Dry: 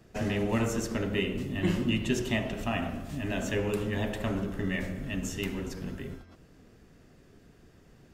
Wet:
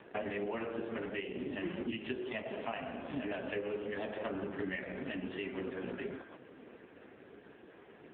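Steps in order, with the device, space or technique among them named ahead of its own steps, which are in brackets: voicemail (BPF 340–3000 Hz; compressor 10:1, threshold -44 dBFS, peak gain reduction 17.5 dB; gain +11 dB; AMR-NB 4.75 kbps 8000 Hz)

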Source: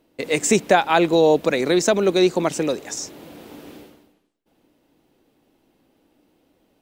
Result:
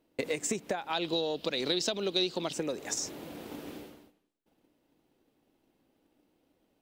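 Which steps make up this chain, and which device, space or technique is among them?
gate -56 dBFS, range -7 dB; drum-bus smash (transient shaper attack +5 dB, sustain +1 dB; compressor 16:1, threshold -25 dBFS, peak gain reduction 20 dB; soft clip -15.5 dBFS, distortion -24 dB); 0.93–2.53 band shelf 3800 Hz +13.5 dB 1.1 oct; gain -3 dB

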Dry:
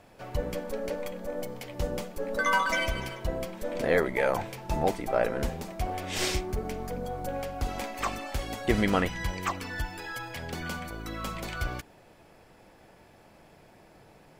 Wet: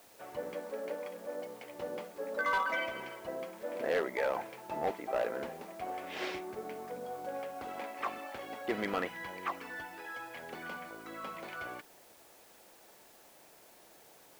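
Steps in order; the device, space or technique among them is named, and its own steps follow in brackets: aircraft radio (BPF 330–2500 Hz; hard clip -20.5 dBFS, distortion -16 dB; white noise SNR 22 dB); gain -4.5 dB

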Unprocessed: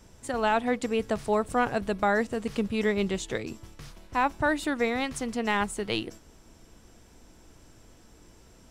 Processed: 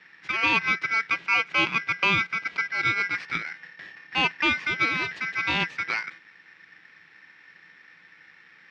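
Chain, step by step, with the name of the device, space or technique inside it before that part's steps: 1.07–3.15 HPF 180 Hz 12 dB/oct; ring modulator pedal into a guitar cabinet (polarity switched at an audio rate 1800 Hz; speaker cabinet 97–4000 Hz, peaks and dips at 170 Hz +10 dB, 320 Hz +6 dB, 650 Hz -4 dB, 2400 Hz +7 dB)

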